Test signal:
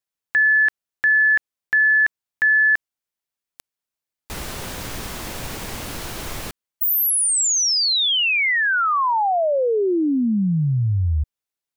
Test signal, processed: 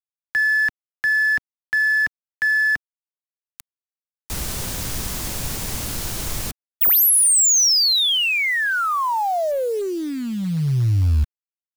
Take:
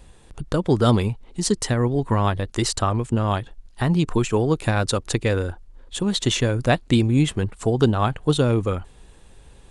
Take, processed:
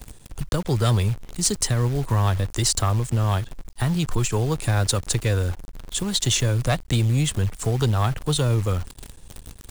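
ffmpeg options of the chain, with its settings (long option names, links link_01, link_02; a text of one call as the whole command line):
ffmpeg -i in.wav -filter_complex "[0:a]bass=frequency=250:gain=7,treble=frequency=4000:gain=9,acrossover=split=140|430|2700[link_01][link_02][link_03][link_04];[link_02]acompressor=threshold=-32dB:ratio=6:release=99:knee=6[link_05];[link_01][link_05][link_03][link_04]amix=inputs=4:normalize=0,asoftclip=type=tanh:threshold=-10.5dB,acrusher=bits=7:dc=4:mix=0:aa=0.000001,volume=-1.5dB" out.wav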